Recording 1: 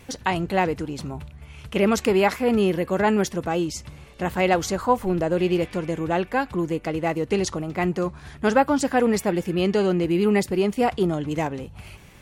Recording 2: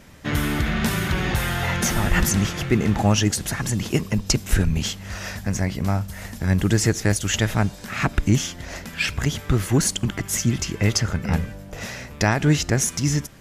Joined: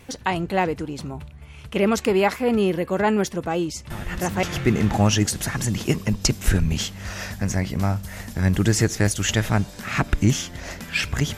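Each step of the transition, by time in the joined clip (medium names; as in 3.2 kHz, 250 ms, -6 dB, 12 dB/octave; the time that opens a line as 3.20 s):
recording 1
3.90 s: add recording 2 from 1.95 s 0.53 s -11 dB
4.43 s: go over to recording 2 from 2.48 s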